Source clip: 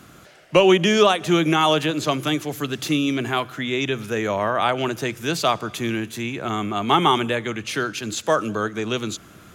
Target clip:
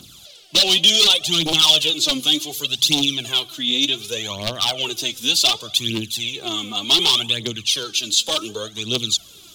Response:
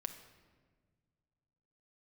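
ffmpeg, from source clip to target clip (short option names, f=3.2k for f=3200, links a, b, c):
-af "aphaser=in_gain=1:out_gain=1:delay=4.2:decay=0.7:speed=0.67:type=triangular,aeval=exprs='0.282*(abs(mod(val(0)/0.282+3,4)-2)-1)':c=same,highshelf=f=2.5k:t=q:w=3:g=12.5,volume=-7.5dB"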